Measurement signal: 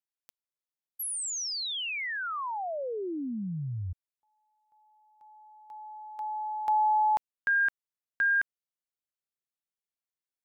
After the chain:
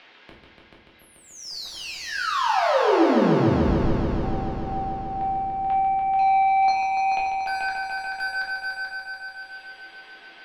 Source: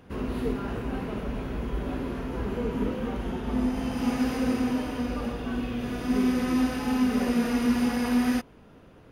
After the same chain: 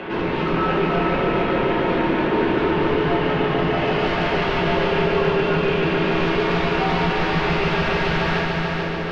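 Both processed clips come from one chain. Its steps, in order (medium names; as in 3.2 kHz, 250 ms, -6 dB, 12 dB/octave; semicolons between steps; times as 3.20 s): reverb removal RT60 1.2 s; Chebyshev band-pass 420–3100 Hz, order 2; treble shelf 2.3 kHz +11.5 dB; in parallel at +2 dB: upward compressor, threshold -33 dBFS; on the sum: wavefolder -26 dBFS; frequency shift -81 Hz; saturation -30.5 dBFS; distance through air 290 m; on a send: multi-head delay 145 ms, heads all three, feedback 68%, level -8 dB; on the sum: simulated room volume 110 m³, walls mixed, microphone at 1 m; trim +8 dB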